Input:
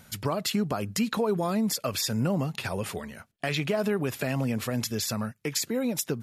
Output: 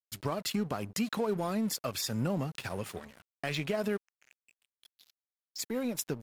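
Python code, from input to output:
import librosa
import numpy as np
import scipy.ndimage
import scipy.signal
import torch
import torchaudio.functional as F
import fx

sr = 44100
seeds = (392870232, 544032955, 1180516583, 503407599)

y = fx.bandpass_q(x, sr, hz=fx.line((3.96, 1800.0), (5.58, 5400.0)), q=13.0, at=(3.96, 5.58), fade=0.02)
y = np.sign(y) * np.maximum(np.abs(y) - 10.0 ** (-42.0 / 20.0), 0.0)
y = y * librosa.db_to_amplitude(-4.0)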